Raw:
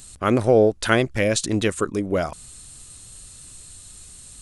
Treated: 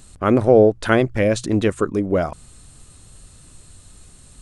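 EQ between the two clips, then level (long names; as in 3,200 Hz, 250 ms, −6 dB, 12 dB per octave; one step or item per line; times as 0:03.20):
high-shelf EQ 2,300 Hz −12 dB
mains-hum notches 60/120 Hz
+4.0 dB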